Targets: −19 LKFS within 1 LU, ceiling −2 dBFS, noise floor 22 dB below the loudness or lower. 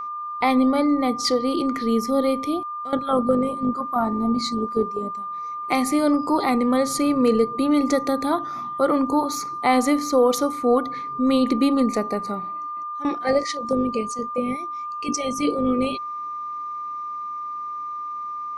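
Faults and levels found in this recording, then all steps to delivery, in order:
interfering tone 1,200 Hz; level of the tone −28 dBFS; integrated loudness −23.0 LKFS; sample peak −8.0 dBFS; target loudness −19.0 LKFS
→ notch filter 1,200 Hz, Q 30
level +4 dB

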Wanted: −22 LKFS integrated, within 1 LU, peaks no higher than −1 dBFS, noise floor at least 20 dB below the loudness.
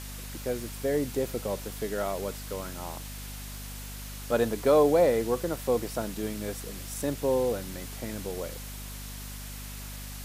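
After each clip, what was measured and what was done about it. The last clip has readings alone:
mains hum 50 Hz; hum harmonics up to 250 Hz; level of the hum −39 dBFS; background noise floor −40 dBFS; target noise floor −51 dBFS; integrated loudness −30.5 LKFS; sample peak −10.5 dBFS; target loudness −22.0 LKFS
→ hum removal 50 Hz, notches 5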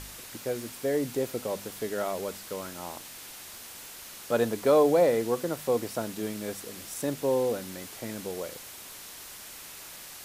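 mains hum none found; background noise floor −45 dBFS; target noise floor −50 dBFS
→ noise reduction from a noise print 6 dB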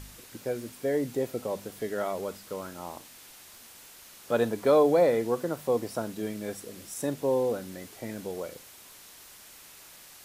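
background noise floor −51 dBFS; integrated loudness −29.5 LKFS; sample peak −11.0 dBFS; target loudness −22.0 LKFS
→ level +7.5 dB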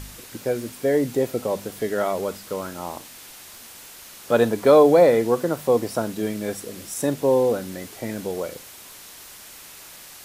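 integrated loudness −22.0 LKFS; sample peak −3.5 dBFS; background noise floor −43 dBFS

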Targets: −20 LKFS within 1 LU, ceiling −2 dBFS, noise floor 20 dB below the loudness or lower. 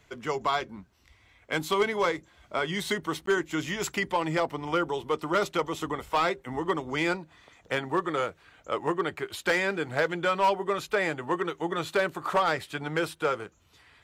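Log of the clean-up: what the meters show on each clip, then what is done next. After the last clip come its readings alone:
share of clipped samples 0.5%; peaks flattened at −17.5 dBFS; number of dropouts 1; longest dropout 13 ms; integrated loudness −29.0 LKFS; sample peak −17.5 dBFS; target loudness −20.0 LKFS
→ clipped peaks rebuilt −17.5 dBFS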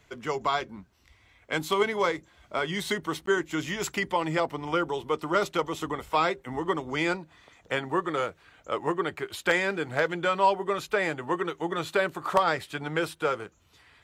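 share of clipped samples 0.0%; number of dropouts 1; longest dropout 13 ms
→ repair the gap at 0:03.26, 13 ms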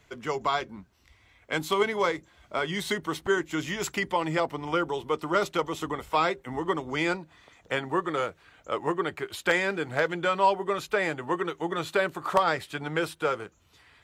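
number of dropouts 0; integrated loudness −28.5 LKFS; sample peak −8.5 dBFS; target loudness −20.0 LKFS
→ level +8.5 dB
brickwall limiter −2 dBFS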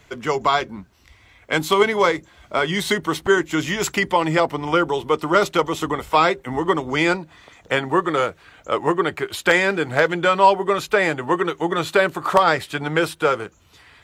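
integrated loudness −20.0 LKFS; sample peak −2.0 dBFS; background noise floor −53 dBFS

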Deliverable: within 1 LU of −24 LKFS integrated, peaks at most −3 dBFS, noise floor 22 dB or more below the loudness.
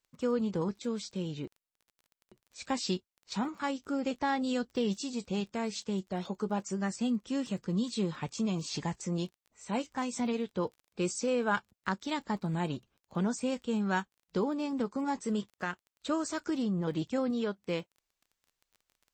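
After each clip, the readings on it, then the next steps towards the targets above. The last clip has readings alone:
crackle rate 21 per second; integrated loudness −34.0 LKFS; sample peak −17.0 dBFS; target loudness −24.0 LKFS
→ click removal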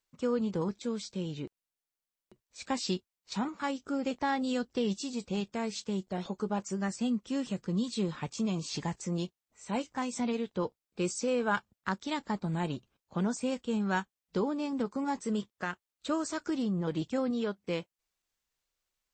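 crackle rate 0 per second; integrated loudness −34.0 LKFS; sample peak −18.0 dBFS; target loudness −24.0 LKFS
→ level +10 dB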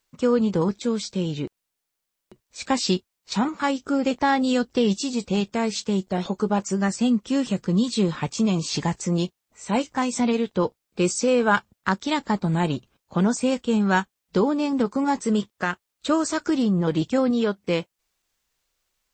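integrated loudness −24.0 LKFS; sample peak −8.0 dBFS; background noise floor −81 dBFS

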